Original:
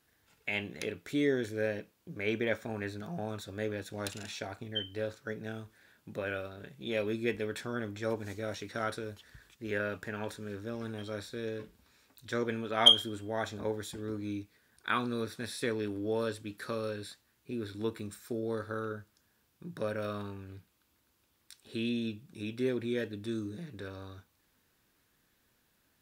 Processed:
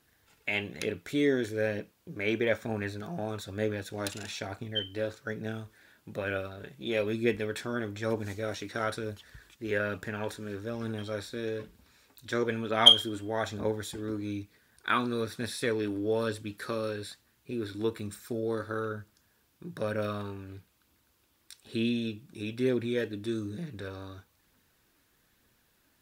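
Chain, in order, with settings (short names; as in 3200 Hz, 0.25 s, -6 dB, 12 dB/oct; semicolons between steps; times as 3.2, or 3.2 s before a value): phaser 1.1 Hz, delay 3.6 ms, feedback 25%; gain +3 dB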